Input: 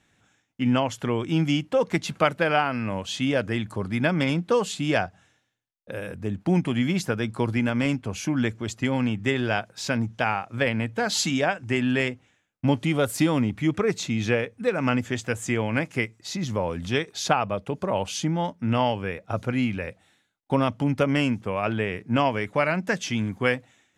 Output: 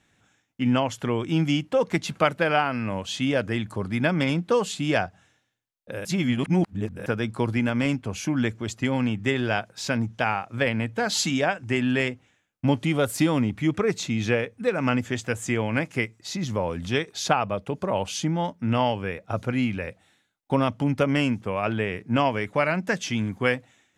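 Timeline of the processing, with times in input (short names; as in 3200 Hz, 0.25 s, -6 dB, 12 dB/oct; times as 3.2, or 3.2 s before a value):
6.05–7.06 reverse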